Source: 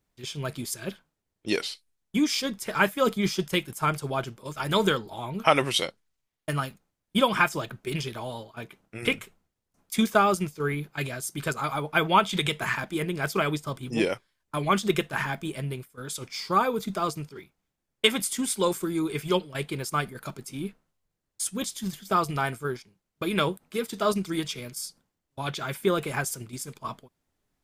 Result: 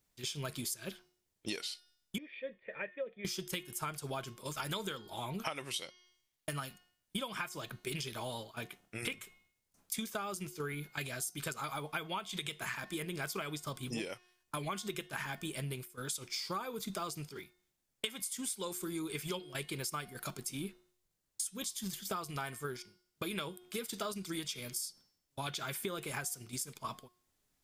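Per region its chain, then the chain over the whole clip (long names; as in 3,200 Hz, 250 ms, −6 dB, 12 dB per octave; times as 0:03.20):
0:02.18–0:03.25: formant resonators in series e + high-shelf EQ 3,200 Hz +9.5 dB
whole clip: high-shelf EQ 2,700 Hz +10 dB; hum removal 360.7 Hz, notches 17; downward compressor 12 to 1, threshold −31 dBFS; level −4.5 dB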